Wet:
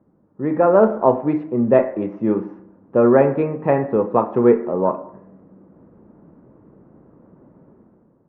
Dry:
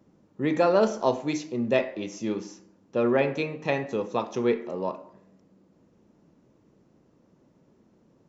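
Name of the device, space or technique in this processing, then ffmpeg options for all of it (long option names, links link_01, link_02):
action camera in a waterproof case: -af "lowpass=frequency=1500:width=0.5412,lowpass=frequency=1500:width=1.3066,dynaudnorm=framelen=170:gausssize=7:maxgain=11.5dB,volume=1dB" -ar 48000 -c:a aac -b:a 64k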